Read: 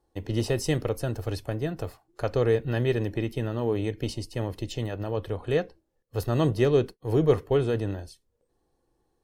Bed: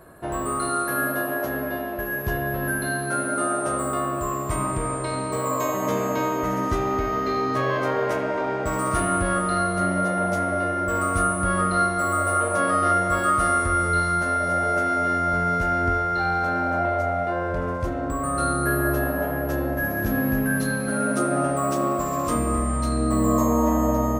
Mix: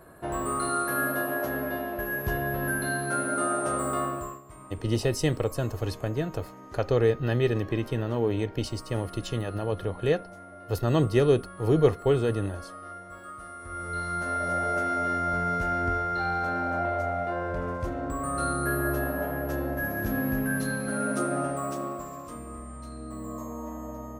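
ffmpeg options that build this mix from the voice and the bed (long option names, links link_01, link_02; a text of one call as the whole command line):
ffmpeg -i stem1.wav -i stem2.wav -filter_complex "[0:a]adelay=4550,volume=0.5dB[link_01];[1:a]volume=14dB,afade=type=out:start_time=4.03:duration=0.38:silence=0.112202,afade=type=in:start_time=13.58:duration=0.89:silence=0.141254,afade=type=out:start_time=21.24:duration=1.03:silence=0.251189[link_02];[link_01][link_02]amix=inputs=2:normalize=0" out.wav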